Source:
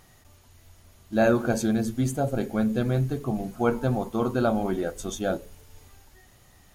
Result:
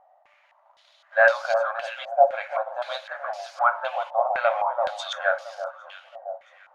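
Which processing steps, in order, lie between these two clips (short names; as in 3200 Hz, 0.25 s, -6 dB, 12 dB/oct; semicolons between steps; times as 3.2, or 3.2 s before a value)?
sample leveller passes 1; brick-wall FIR high-pass 530 Hz; on a send: echo with dull and thin repeats by turns 0.336 s, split 1400 Hz, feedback 56%, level -7 dB; on the sum: stepped low-pass 3.9 Hz 740–5000 Hz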